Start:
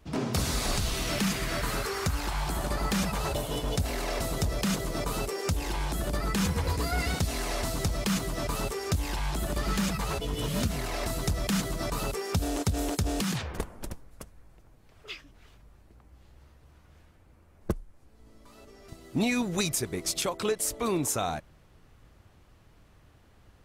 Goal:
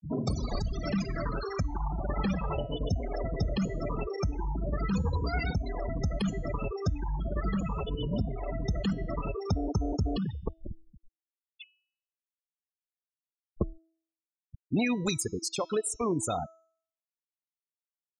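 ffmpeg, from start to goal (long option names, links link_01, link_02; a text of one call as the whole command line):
ffmpeg -i in.wav -af "afftfilt=real='re*gte(hypot(re,im),0.0562)':imag='im*gte(hypot(re,im),0.0562)':win_size=1024:overlap=0.75,atempo=1.3,bandreject=frequency=325.7:width_type=h:width=4,bandreject=frequency=651.4:width_type=h:width=4,bandreject=frequency=977.1:width_type=h:width=4,bandreject=frequency=1302.8:width_type=h:width=4,bandreject=frequency=1628.5:width_type=h:width=4,bandreject=frequency=1954.2:width_type=h:width=4,bandreject=frequency=2279.9:width_type=h:width=4,bandreject=frequency=2605.6:width_type=h:width=4,bandreject=frequency=2931.3:width_type=h:width=4,bandreject=frequency=3257:width_type=h:width=4,bandreject=frequency=3582.7:width_type=h:width=4,bandreject=frequency=3908.4:width_type=h:width=4,bandreject=frequency=4234.1:width_type=h:width=4,bandreject=frequency=4559.8:width_type=h:width=4,bandreject=frequency=4885.5:width_type=h:width=4,bandreject=frequency=5211.2:width_type=h:width=4,bandreject=frequency=5536.9:width_type=h:width=4,bandreject=frequency=5862.6:width_type=h:width=4,bandreject=frequency=6188.3:width_type=h:width=4,bandreject=frequency=6514:width_type=h:width=4,bandreject=frequency=6839.7:width_type=h:width=4,bandreject=frequency=7165.4:width_type=h:width=4" out.wav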